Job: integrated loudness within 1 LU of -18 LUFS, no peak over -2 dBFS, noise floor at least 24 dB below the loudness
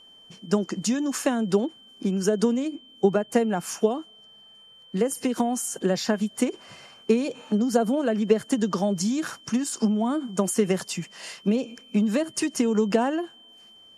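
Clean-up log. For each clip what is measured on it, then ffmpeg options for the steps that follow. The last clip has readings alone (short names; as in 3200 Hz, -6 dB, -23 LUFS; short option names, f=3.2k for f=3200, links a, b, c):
steady tone 3100 Hz; tone level -49 dBFS; loudness -25.5 LUFS; peak -7.5 dBFS; loudness target -18.0 LUFS
-> -af "bandreject=f=3.1k:w=30"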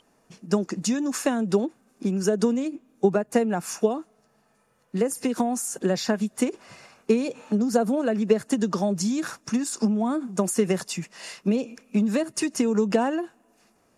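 steady tone none; loudness -25.5 LUFS; peak -7.0 dBFS; loudness target -18.0 LUFS
-> -af "volume=7.5dB,alimiter=limit=-2dB:level=0:latency=1"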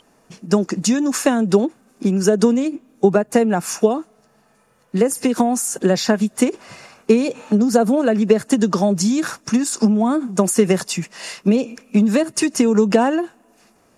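loudness -18.0 LUFS; peak -2.0 dBFS; noise floor -57 dBFS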